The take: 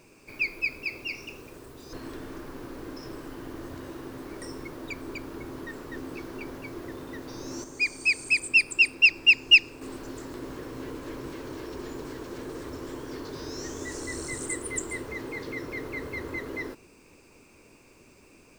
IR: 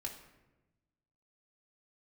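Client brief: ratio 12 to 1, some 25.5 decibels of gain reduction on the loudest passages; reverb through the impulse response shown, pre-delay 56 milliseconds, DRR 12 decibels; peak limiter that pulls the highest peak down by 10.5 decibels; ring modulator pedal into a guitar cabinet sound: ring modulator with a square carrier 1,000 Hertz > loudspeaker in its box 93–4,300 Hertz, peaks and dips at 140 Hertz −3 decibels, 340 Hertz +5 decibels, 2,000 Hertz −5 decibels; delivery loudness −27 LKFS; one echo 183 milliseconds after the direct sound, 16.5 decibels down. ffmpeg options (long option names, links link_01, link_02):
-filter_complex "[0:a]acompressor=threshold=-39dB:ratio=12,alimiter=level_in=15.5dB:limit=-24dB:level=0:latency=1,volume=-15.5dB,aecho=1:1:183:0.15,asplit=2[link_01][link_02];[1:a]atrim=start_sample=2205,adelay=56[link_03];[link_02][link_03]afir=irnorm=-1:irlink=0,volume=-10.5dB[link_04];[link_01][link_04]amix=inputs=2:normalize=0,aeval=exprs='val(0)*sgn(sin(2*PI*1000*n/s))':channel_layout=same,highpass=93,equalizer=frequency=140:width_type=q:width=4:gain=-3,equalizer=frequency=340:width_type=q:width=4:gain=5,equalizer=frequency=2000:width_type=q:width=4:gain=-5,lowpass=frequency=4300:width=0.5412,lowpass=frequency=4300:width=1.3066,volume=21dB"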